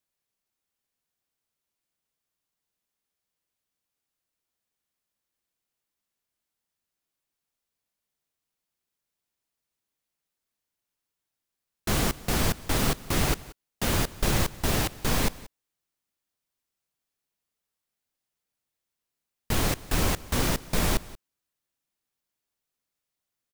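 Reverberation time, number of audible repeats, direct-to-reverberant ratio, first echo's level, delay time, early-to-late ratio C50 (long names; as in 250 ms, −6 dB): no reverb audible, 1, no reverb audible, −20.0 dB, 181 ms, no reverb audible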